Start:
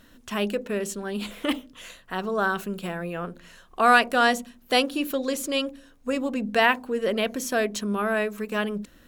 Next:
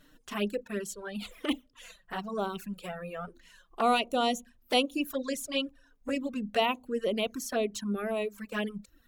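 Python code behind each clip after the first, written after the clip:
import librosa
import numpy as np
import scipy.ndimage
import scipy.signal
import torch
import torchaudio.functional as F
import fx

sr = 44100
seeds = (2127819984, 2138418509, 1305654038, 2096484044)

y = fx.env_flanger(x, sr, rest_ms=7.2, full_db=-21.0)
y = fx.dereverb_blind(y, sr, rt60_s=0.83)
y = y * librosa.db_to_amplitude(-2.5)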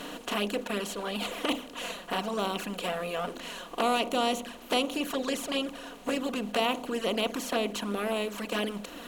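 y = fx.bin_compress(x, sr, power=0.4)
y = y * librosa.db_to_amplitude(-4.5)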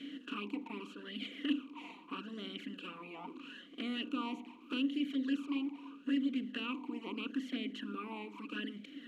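y = fx.vowel_sweep(x, sr, vowels='i-u', hz=0.79)
y = y * librosa.db_to_amplitude(2.5)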